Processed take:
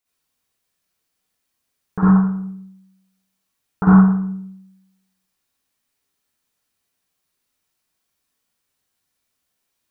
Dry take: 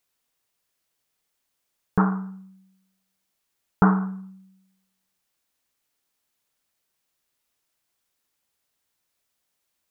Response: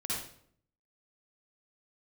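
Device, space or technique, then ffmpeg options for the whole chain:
bathroom: -filter_complex "[1:a]atrim=start_sample=2205[s0];[0:a][s0]afir=irnorm=-1:irlink=0,volume=0.841"

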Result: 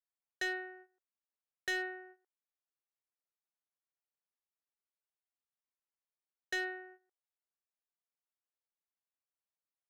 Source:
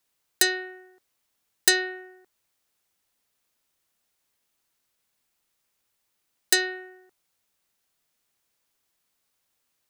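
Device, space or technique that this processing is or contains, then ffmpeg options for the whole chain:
walkie-talkie: -af "highpass=440,lowpass=2700,lowpass=f=1600:p=1,asoftclip=type=hard:threshold=0.0422,agate=range=0.158:threshold=0.00251:ratio=16:detection=peak,volume=0.668"

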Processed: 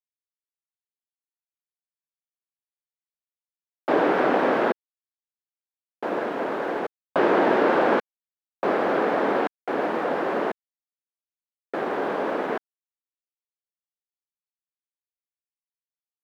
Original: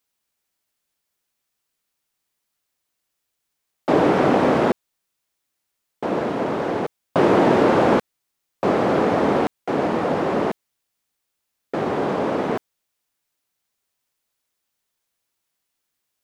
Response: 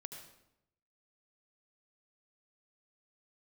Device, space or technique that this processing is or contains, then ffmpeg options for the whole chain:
pocket radio on a weak battery: -af "highpass=300,lowpass=3900,aeval=exprs='sgn(val(0))*max(abs(val(0))-0.00355,0)':c=same,equalizer=f=1600:t=o:w=0.38:g=5,volume=0.75"

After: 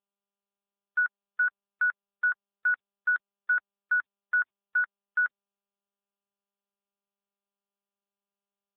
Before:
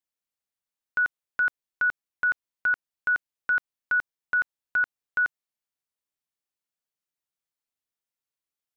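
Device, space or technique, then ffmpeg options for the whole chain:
mobile call with aggressive noise cancelling: -filter_complex "[0:a]asettb=1/sr,asplit=3[s0][s1][s2];[s0]atrim=end=0.984[s3];[s1]atrim=start=0.98:end=1.87,asetpts=PTS-STARTPTS,afade=t=in:d=0.004:c=qsin,afade=t=out:st=0.886:d=0.004:c=qsin,asubboost=boost=10:cutoff=100[s4];[s2]atrim=start=1.866[s5];[s3][s4]acrossfade=d=0.004:c1=hsin:c2=qsin[s6];[s6][s5]acrossfade=d=0.004:c1=qsin:c2=hsin,highpass=f=120:p=1,afftdn=nr=22:nf=-40" -ar 8000 -c:a libopencore_amrnb -b:a 10200

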